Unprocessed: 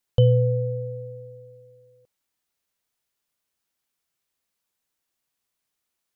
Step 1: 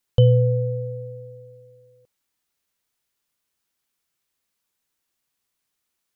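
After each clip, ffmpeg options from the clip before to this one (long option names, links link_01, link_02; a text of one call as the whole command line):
ffmpeg -i in.wav -af "equalizer=frequency=660:width_type=o:width=0.77:gain=-2.5,volume=2.5dB" out.wav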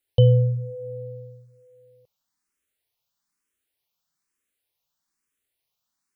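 ffmpeg -i in.wav -filter_complex "[0:a]asplit=2[link_01][link_02];[link_02]afreqshift=1.1[link_03];[link_01][link_03]amix=inputs=2:normalize=1" out.wav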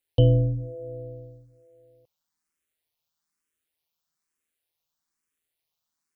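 ffmpeg -i in.wav -af "tremolo=f=160:d=0.571" out.wav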